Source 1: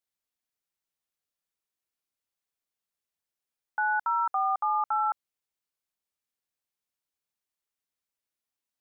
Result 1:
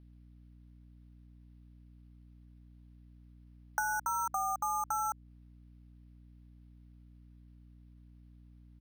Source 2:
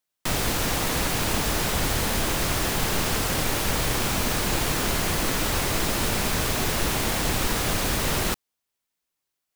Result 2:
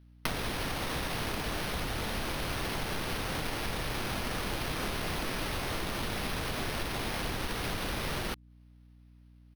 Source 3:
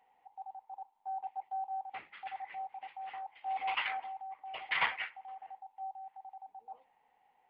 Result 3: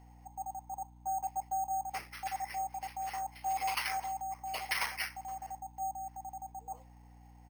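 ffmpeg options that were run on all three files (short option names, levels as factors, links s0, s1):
-af "acompressor=threshold=0.0178:ratio=16,aresample=32000,aresample=44100,acrusher=samples=6:mix=1:aa=0.000001,aeval=exprs='val(0)+0.001*(sin(2*PI*60*n/s)+sin(2*PI*2*60*n/s)/2+sin(2*PI*3*60*n/s)/3+sin(2*PI*4*60*n/s)/4+sin(2*PI*5*60*n/s)/5)':c=same,volume=1.78"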